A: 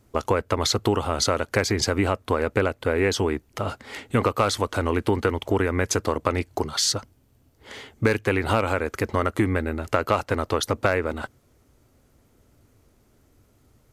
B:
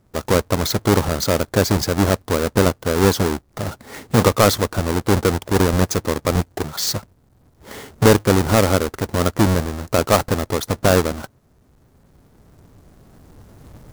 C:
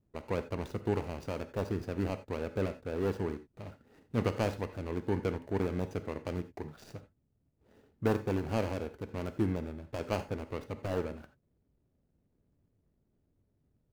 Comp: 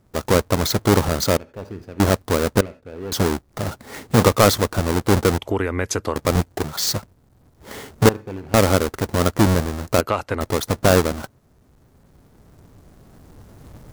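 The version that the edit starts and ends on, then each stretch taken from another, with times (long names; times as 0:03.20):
B
0:01.37–0:02.00: punch in from C
0:02.61–0:03.12: punch in from C
0:05.38–0:06.16: punch in from A
0:08.09–0:08.54: punch in from C
0:10.01–0:10.41: punch in from A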